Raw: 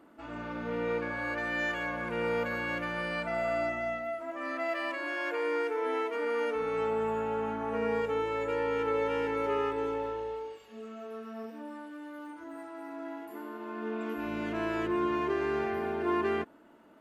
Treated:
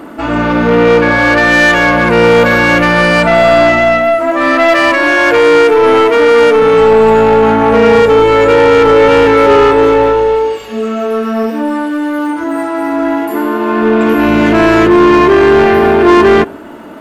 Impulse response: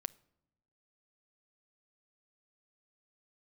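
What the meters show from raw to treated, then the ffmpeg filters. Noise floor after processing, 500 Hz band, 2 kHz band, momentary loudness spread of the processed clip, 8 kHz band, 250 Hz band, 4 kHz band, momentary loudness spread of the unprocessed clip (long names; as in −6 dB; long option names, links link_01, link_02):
−25 dBFS, +25.0 dB, +24.5 dB, 9 LU, can't be measured, +25.5 dB, +26.5 dB, 13 LU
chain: -filter_complex "[0:a]asplit=2[link_01][link_02];[1:a]atrim=start_sample=2205,lowshelf=frequency=420:gain=3[link_03];[link_02][link_03]afir=irnorm=-1:irlink=0,volume=-0.5dB[link_04];[link_01][link_04]amix=inputs=2:normalize=0,apsyclip=17dB,acontrast=71,volume=-1dB"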